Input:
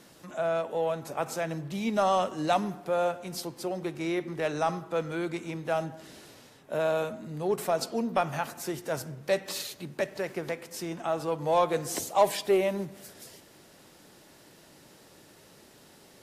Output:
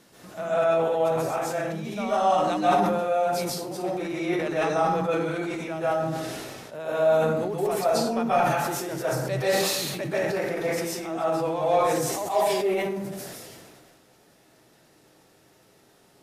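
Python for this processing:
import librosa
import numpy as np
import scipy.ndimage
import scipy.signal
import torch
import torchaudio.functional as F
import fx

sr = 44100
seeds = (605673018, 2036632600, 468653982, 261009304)

y = fx.rider(x, sr, range_db=10, speed_s=2.0)
y = fx.rev_plate(y, sr, seeds[0], rt60_s=0.75, hf_ratio=0.6, predelay_ms=120, drr_db=-9.0)
y = fx.sustainer(y, sr, db_per_s=27.0)
y = F.gain(torch.from_numpy(y), -8.5).numpy()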